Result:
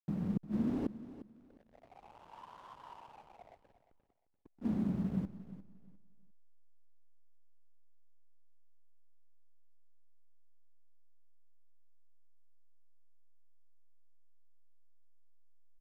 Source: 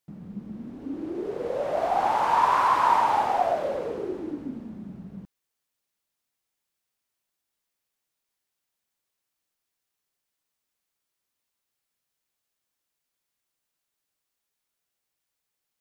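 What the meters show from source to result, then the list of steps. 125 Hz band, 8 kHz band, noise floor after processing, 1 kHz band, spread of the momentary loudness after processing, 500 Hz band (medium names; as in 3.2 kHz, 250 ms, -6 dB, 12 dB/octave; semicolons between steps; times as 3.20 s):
+3.0 dB, no reading, -72 dBFS, -32.0 dB, 20 LU, -22.0 dB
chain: inverted gate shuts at -28 dBFS, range -36 dB; hysteresis with a dead band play -53.5 dBFS; vibrato 4.6 Hz 35 cents; on a send: feedback delay 352 ms, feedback 24%, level -15 dB; on the sum: trim +6 dB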